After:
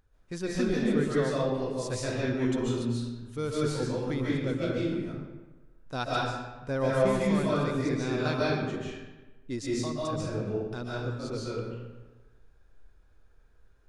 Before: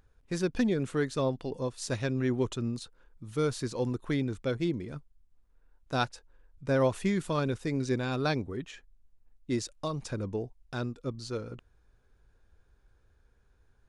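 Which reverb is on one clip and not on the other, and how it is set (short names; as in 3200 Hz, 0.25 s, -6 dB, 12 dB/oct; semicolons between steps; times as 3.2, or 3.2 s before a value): digital reverb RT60 1.2 s, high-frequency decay 0.7×, pre-delay 0.105 s, DRR -6.5 dB; gain -4.5 dB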